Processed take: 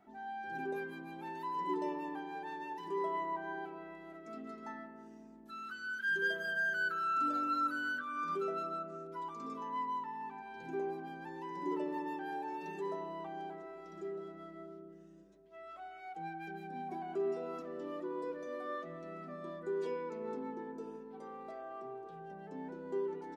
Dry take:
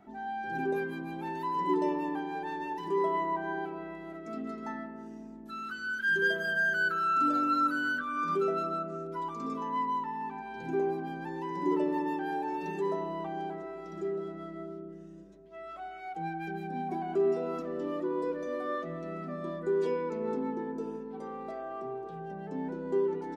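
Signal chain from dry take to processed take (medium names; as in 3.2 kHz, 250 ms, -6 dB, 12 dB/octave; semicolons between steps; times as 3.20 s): bass shelf 320 Hz -6.5 dB; trim -5.5 dB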